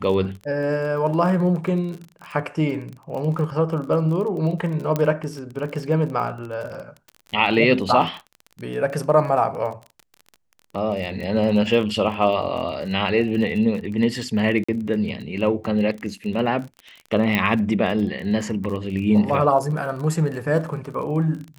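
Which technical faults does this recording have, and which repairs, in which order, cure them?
crackle 31/s -30 dBFS
4.96 pop -9 dBFS
14.64–14.69 gap 45 ms
17.35 pop -8 dBFS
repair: de-click; interpolate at 14.64, 45 ms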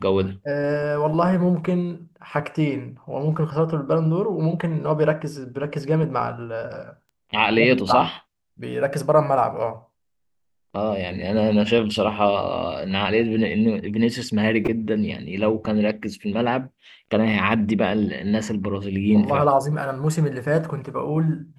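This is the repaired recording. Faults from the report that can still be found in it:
none

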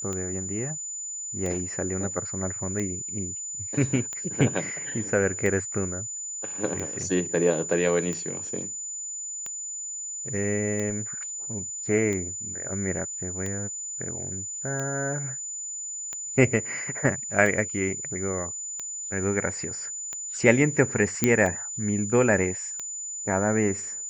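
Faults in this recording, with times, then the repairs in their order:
tick 45 rpm -19 dBFS
tone 7000 Hz -32 dBFS
21.24 pop -6 dBFS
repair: de-click; notch 7000 Hz, Q 30

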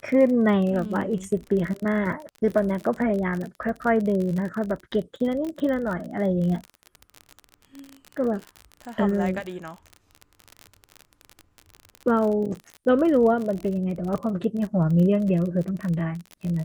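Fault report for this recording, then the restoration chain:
crackle 41/s -29 dBFS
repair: de-click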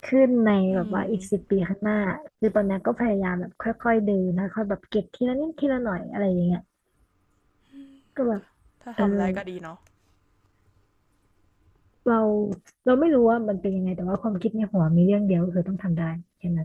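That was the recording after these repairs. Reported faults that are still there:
none

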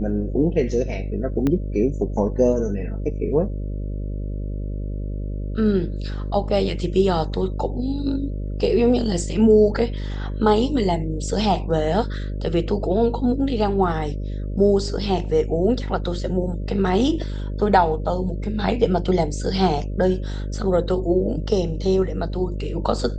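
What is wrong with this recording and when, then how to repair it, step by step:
buzz 50 Hz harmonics 12 -27 dBFS
1.47 pop -11 dBFS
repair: de-click; de-hum 50 Hz, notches 12

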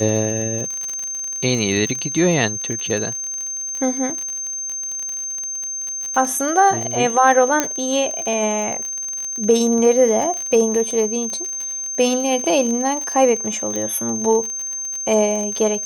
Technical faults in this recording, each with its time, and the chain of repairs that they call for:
crackle 35/s -23 dBFS
tone 6300 Hz -24 dBFS
7.6 pop -2 dBFS
13.76 pop -12 dBFS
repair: de-click; notch 6300 Hz, Q 30

